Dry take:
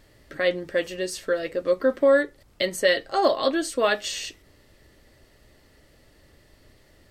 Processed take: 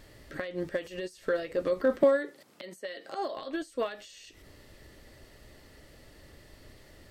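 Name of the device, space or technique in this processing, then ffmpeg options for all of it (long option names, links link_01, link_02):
de-esser from a sidechain: -filter_complex "[0:a]asplit=2[link_01][link_02];[link_02]highpass=5500,apad=whole_len=313397[link_03];[link_01][link_03]sidechaincompress=threshold=-54dB:ratio=10:attack=0.68:release=82,asettb=1/sr,asplit=3[link_04][link_05][link_06];[link_04]atrim=end=2.034[link_07];[link_05]atrim=start=2.03:end=3.37,asetpts=PTS-STARTPTS,afade=type=in:duration=0.004:curve=qsin,afade=type=out:start_time=1.336:duration=0.004:curve=qsin,highpass=frequency=180:width=0.5412,highpass=frequency=180:width=1.3066[link_08];[link_06]atrim=start=3.366[link_09];[link_07][link_08]acrossfade=duration=0.004:curve1=hsin:curve2=qsin[link_10];[link_10][link_09]acrossfade=duration=0.004:curve1=qsin:curve2=hsin,volume=2.5dB"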